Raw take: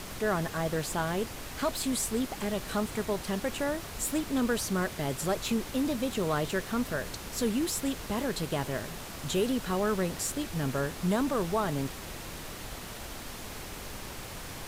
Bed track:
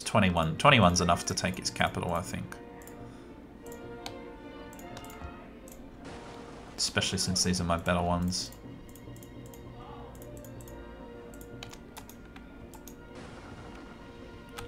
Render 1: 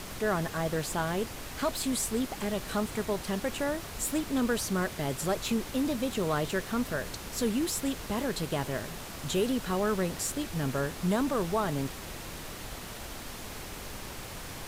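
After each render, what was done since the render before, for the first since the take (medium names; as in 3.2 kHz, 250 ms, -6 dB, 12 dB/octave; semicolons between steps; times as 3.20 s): no audible change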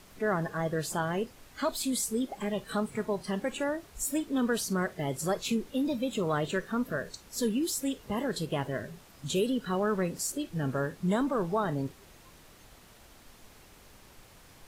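noise print and reduce 14 dB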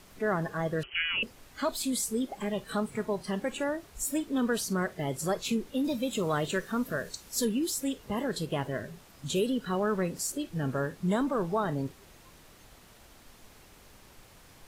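0.83–1.23 s: frequency inversion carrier 3.1 kHz; 5.84–7.45 s: treble shelf 4.1 kHz +6.5 dB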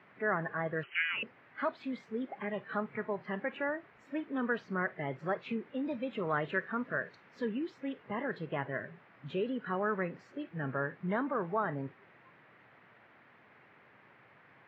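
elliptic band-pass 120–2000 Hz, stop band 60 dB; tilt shelf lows -6.5 dB, about 1.2 kHz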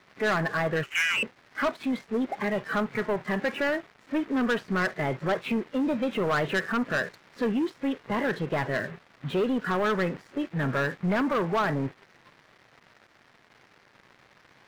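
waveshaping leveller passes 3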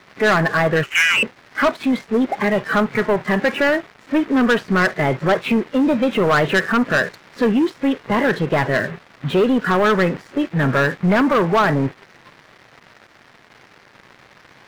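trim +10 dB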